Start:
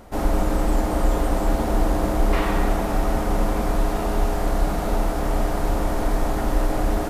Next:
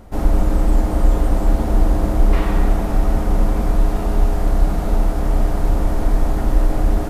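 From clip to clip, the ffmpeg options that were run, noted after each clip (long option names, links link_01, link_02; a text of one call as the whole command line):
ffmpeg -i in.wav -af "lowshelf=frequency=240:gain=9.5,volume=-2.5dB" out.wav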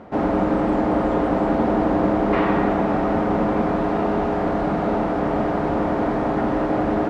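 ffmpeg -i in.wav -af "highpass=200,lowpass=2300,volume=6dB" out.wav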